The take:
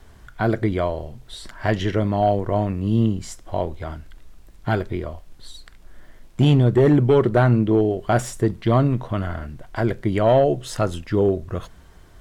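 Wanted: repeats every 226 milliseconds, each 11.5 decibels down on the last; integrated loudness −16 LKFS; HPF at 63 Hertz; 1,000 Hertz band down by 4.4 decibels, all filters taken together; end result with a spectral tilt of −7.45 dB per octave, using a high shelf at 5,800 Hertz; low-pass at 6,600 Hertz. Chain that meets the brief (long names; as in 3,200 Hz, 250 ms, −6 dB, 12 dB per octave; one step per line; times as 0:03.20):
high-pass filter 63 Hz
low-pass filter 6,600 Hz
parametric band 1,000 Hz −7 dB
high-shelf EQ 5,800 Hz −8.5 dB
repeating echo 226 ms, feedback 27%, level −11.5 dB
level +5.5 dB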